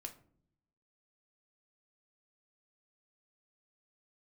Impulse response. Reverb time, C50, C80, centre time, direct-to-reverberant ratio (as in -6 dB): no single decay rate, 13.5 dB, 18.0 dB, 10 ms, 3.5 dB